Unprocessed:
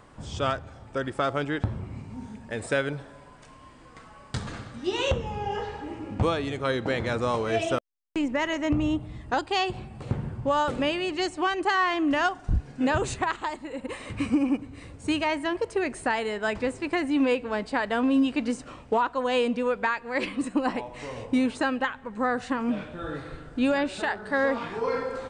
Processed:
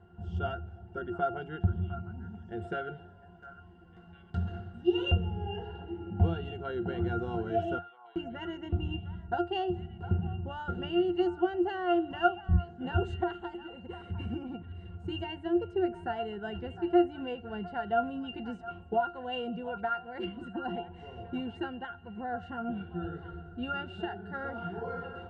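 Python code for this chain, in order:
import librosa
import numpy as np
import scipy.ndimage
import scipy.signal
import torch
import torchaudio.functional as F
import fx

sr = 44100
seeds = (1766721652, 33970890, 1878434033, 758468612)

y = fx.octave_resonator(x, sr, note='F', decay_s=0.17)
y = fx.echo_stepped(y, sr, ms=705, hz=1100.0, octaves=1.4, feedback_pct=70, wet_db=-10)
y = y * librosa.db_to_amplitude(8.5)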